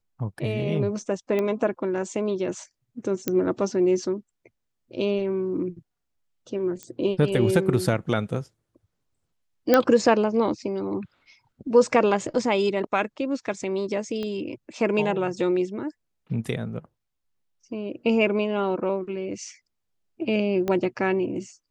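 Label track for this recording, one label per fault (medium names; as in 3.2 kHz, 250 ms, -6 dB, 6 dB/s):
1.390000	1.390000	pop -15 dBFS
3.280000	3.280000	pop -9 dBFS
6.830000	6.830000	pop -21 dBFS
9.740000	9.740000	pop -5 dBFS
14.230000	14.230000	pop -20 dBFS
20.680000	20.680000	pop -14 dBFS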